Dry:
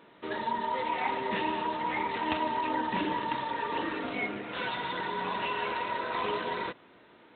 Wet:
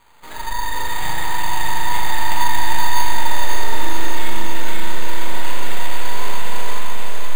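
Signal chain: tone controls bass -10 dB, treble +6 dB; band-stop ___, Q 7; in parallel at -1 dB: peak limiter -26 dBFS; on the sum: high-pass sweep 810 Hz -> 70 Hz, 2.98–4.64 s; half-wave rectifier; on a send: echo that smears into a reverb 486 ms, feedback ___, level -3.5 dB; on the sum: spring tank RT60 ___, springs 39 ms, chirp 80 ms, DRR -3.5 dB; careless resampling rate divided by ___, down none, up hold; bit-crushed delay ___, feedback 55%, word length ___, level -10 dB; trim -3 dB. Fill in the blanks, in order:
650 Hz, 72%, 2.2 s, 8×, 549 ms, 7-bit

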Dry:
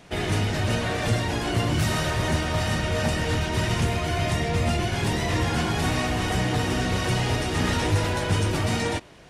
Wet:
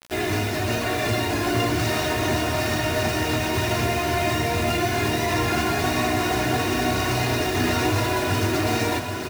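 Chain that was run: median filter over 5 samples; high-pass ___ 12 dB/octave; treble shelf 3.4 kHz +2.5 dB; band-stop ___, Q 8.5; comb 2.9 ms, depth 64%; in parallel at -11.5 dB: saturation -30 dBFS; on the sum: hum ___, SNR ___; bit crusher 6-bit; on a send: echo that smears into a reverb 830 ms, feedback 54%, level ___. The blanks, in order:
110 Hz, 3.2 kHz, 60 Hz, 23 dB, -6.5 dB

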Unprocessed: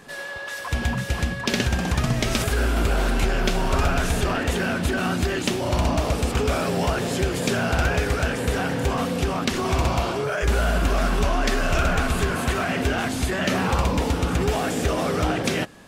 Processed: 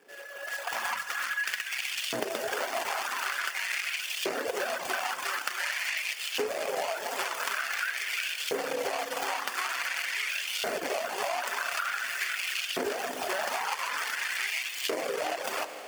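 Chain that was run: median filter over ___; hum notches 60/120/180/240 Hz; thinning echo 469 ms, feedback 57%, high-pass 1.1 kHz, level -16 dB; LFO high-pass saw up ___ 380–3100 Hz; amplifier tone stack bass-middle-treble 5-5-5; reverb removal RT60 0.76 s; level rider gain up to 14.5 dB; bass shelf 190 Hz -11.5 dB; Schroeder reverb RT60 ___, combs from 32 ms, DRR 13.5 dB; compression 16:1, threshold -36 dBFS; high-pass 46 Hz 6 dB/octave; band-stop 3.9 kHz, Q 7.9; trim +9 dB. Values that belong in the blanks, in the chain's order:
41 samples, 0.47 Hz, 2.9 s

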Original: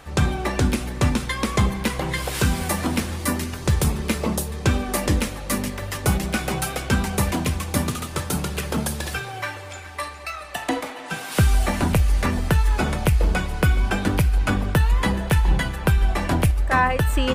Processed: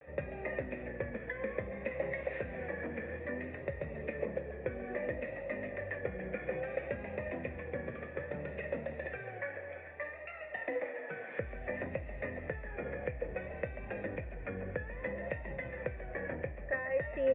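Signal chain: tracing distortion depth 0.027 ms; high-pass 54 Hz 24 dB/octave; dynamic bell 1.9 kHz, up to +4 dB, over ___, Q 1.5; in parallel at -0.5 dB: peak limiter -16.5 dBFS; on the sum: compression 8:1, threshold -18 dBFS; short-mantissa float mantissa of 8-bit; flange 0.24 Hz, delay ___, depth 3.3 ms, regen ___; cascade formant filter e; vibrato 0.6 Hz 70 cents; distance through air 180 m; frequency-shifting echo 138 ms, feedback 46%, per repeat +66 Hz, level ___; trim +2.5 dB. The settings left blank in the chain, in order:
-42 dBFS, 6.8 ms, +81%, -14 dB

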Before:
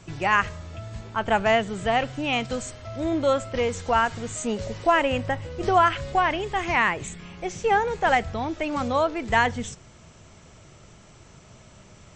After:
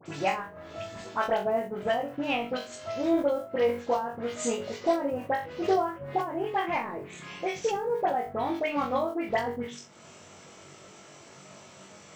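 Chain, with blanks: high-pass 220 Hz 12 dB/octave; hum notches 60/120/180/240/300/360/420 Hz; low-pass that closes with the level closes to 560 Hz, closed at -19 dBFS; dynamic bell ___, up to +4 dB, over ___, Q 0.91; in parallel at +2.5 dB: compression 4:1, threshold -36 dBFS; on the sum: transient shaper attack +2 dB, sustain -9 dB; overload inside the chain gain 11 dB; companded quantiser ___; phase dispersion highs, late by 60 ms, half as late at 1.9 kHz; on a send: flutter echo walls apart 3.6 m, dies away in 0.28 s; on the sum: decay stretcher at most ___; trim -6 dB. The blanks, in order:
5 kHz, -51 dBFS, 8-bit, 130 dB/s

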